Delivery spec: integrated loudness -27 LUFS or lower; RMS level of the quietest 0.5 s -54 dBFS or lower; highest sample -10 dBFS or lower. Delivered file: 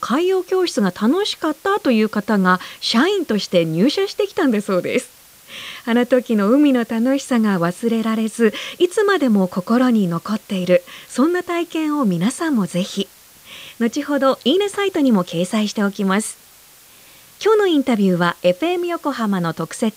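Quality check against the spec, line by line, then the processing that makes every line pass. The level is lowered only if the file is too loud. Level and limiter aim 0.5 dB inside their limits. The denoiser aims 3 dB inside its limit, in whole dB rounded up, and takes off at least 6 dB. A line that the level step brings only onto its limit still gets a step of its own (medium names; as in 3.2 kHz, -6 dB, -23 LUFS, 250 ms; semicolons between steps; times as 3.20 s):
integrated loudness -18.5 LUFS: fail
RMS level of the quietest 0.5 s -47 dBFS: fail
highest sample -3.5 dBFS: fail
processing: trim -9 dB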